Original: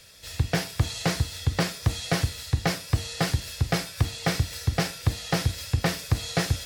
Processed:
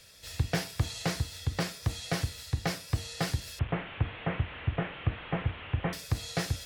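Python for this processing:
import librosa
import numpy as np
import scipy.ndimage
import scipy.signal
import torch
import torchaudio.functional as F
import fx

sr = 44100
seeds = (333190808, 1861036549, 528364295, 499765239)

y = fx.delta_mod(x, sr, bps=16000, step_db=-30.5, at=(3.59, 5.93))
y = fx.rider(y, sr, range_db=4, speed_s=2.0)
y = y * librosa.db_to_amplitude(-6.0)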